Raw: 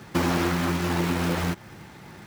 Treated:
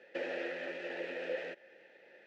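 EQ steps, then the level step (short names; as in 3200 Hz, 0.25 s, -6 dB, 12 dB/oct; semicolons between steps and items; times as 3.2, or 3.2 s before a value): vowel filter e; BPF 330–5900 Hz; +1.0 dB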